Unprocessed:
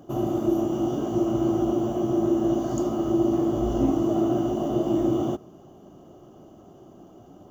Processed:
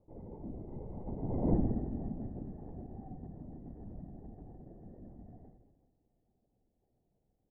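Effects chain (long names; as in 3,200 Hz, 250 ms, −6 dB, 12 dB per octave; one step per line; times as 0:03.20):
source passing by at 0:01.52, 24 m/s, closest 1.3 metres
elliptic band-pass filter 140–2,800 Hz, stop band 40 dB
pitch vibrato 3.9 Hz 7.7 cents
flat-topped bell 1,200 Hz +13 dB 1.3 octaves
downward compressor 1.5 to 1, threshold −56 dBFS, peak gain reduction 12.5 dB
convolution reverb RT60 1.3 s, pre-delay 59 ms, DRR 4.5 dB
pitch shifter −7.5 semitones
spectral tilt −3 dB per octave
linear-prediction vocoder at 8 kHz whisper
level +2 dB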